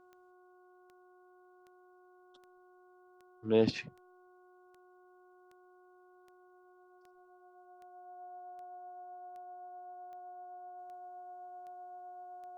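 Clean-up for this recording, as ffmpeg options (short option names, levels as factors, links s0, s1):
-af "adeclick=t=4,bandreject=f=363.9:t=h:w=4,bandreject=f=727.8:t=h:w=4,bandreject=f=1091.7:t=h:w=4,bandreject=f=1455.6:t=h:w=4,bandreject=f=720:w=30"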